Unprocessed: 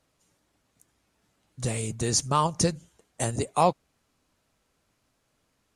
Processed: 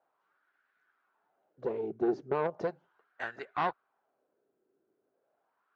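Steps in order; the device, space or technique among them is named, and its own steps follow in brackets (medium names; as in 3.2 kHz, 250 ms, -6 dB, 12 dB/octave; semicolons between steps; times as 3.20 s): wah-wah guitar rig (wah-wah 0.37 Hz 350–1600 Hz, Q 3.1; valve stage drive 30 dB, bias 0.55; cabinet simulation 80–4500 Hz, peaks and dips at 94 Hz -7 dB, 390 Hz +8 dB, 740 Hz +4 dB, 1.5 kHz +9 dB); trim +4.5 dB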